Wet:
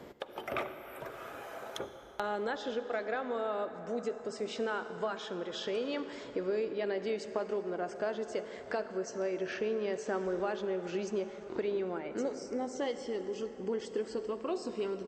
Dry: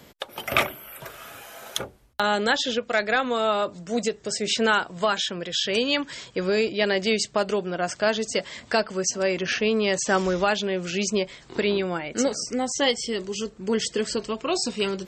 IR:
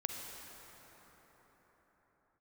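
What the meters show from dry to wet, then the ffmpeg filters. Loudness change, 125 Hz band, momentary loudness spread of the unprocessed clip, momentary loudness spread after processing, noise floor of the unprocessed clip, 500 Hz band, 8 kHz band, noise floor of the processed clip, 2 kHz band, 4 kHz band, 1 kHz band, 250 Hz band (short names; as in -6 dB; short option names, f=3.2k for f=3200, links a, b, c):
-11.5 dB, -14.0 dB, 9 LU, 7 LU, -51 dBFS, -8.5 dB, -21.5 dB, -49 dBFS, -15.5 dB, -19.5 dB, -12.0 dB, -11.0 dB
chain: -filter_complex "[0:a]firequalizer=gain_entry='entry(160,0);entry(360,10);entry(550,7);entry(2800,-4);entry(9800,-10)':delay=0.05:min_phase=1,acompressor=threshold=-40dB:ratio=2,asplit=2[a][b];[1:a]atrim=start_sample=2205,asetrate=43659,aresample=44100[c];[b][c]afir=irnorm=-1:irlink=0,volume=-2.5dB[d];[a][d]amix=inputs=2:normalize=0,volume=-8dB"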